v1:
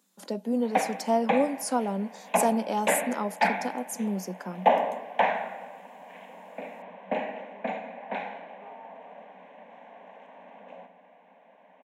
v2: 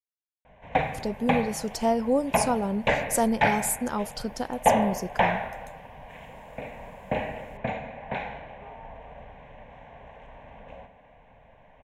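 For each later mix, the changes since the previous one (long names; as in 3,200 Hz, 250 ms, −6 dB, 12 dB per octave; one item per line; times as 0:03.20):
speech: entry +0.75 s
master: remove Chebyshev high-pass with heavy ripple 180 Hz, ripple 3 dB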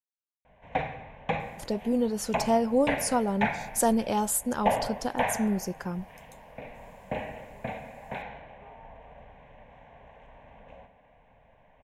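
speech: entry +0.65 s
background −5.0 dB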